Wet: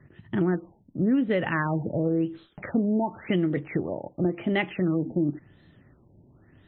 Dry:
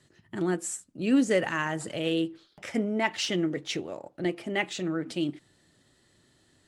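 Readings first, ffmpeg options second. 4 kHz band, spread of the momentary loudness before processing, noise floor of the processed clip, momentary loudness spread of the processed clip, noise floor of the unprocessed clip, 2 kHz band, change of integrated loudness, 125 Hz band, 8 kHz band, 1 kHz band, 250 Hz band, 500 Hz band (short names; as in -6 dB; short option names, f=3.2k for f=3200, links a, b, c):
-8.5 dB, 9 LU, -60 dBFS, 8 LU, -66 dBFS, -0.5 dB, +2.5 dB, +8.5 dB, under -40 dB, +1.5 dB, +3.5 dB, +2.0 dB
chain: -af "bass=f=250:g=8,treble=f=4k:g=-4,acompressor=threshold=-26dB:ratio=6,afftfilt=real='re*lt(b*sr/1024,920*pow(4200/920,0.5+0.5*sin(2*PI*0.93*pts/sr)))':imag='im*lt(b*sr/1024,920*pow(4200/920,0.5+0.5*sin(2*PI*0.93*pts/sr)))':win_size=1024:overlap=0.75,volume=5.5dB"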